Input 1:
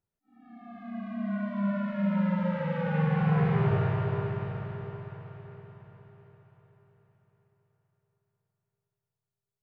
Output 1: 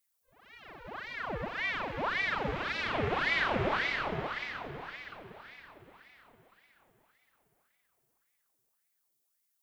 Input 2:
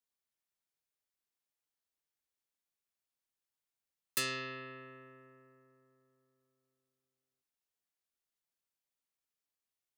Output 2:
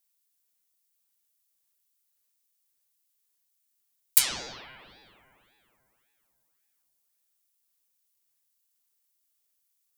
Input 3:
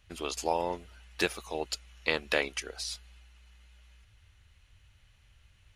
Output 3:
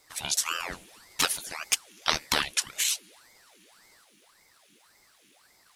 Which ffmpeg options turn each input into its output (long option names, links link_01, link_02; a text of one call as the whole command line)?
ffmpeg -i in.wav -af "crystalizer=i=9:c=0,aeval=exprs='val(0)*sin(2*PI*1200*n/s+1200*0.8/1.8*sin(2*PI*1.8*n/s))':channel_layout=same,volume=-3.5dB" out.wav